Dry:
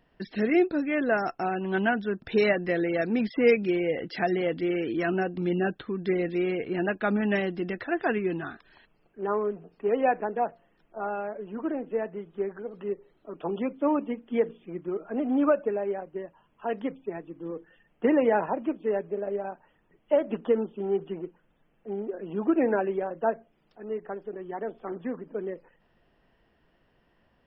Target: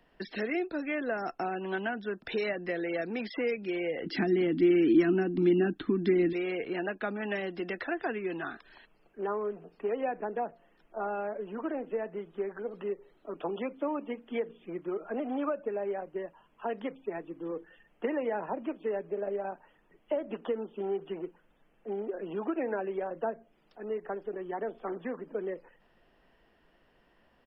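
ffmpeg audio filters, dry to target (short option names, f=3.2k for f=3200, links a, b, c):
-filter_complex "[0:a]acrossover=split=180|420[a][b][c];[a]acompressor=threshold=-51dB:ratio=4[d];[b]acompressor=threshold=-40dB:ratio=4[e];[c]acompressor=threshold=-35dB:ratio=4[f];[d][e][f]amix=inputs=3:normalize=0,asettb=1/sr,asplit=3[g][h][i];[g]atrim=end=4.064[j];[h]atrim=start=4.06:end=6.33,asetpts=PTS-STARTPTS,afade=t=in:d=0.004:c=qsin,afade=t=out:st=2.266:d=0.004:c=qsin,lowshelf=f=400:t=q:w=3:g=8.5[k];[i]atrim=start=6.326[l];[j][k]acrossfade=d=0.004:c1=hsin:c2=qsin[m];[m][l]acrossfade=d=0.004:c1=qsin:c2=hsin,aresample=32000,aresample=44100,equalizer=f=99:w=0.74:g=-8,volume=2dB"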